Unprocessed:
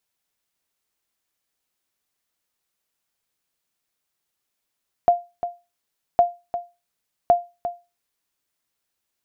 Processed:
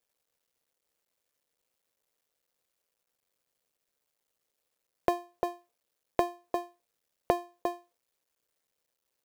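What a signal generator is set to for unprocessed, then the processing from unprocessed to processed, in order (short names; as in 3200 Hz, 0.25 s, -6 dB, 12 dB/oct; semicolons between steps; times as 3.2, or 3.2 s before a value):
sonar ping 699 Hz, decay 0.26 s, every 1.11 s, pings 3, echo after 0.35 s, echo -11.5 dB -7 dBFS
cycle switcher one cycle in 2, muted; bell 500 Hz +9.5 dB 0.66 oct; compressor 3:1, threshold -26 dBFS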